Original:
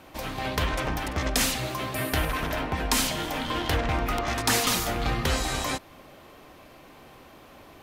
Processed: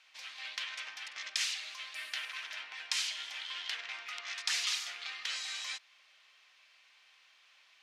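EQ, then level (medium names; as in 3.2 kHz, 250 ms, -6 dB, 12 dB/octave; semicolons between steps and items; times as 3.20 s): Butterworth band-pass 3.6 kHz, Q 0.82; -5.0 dB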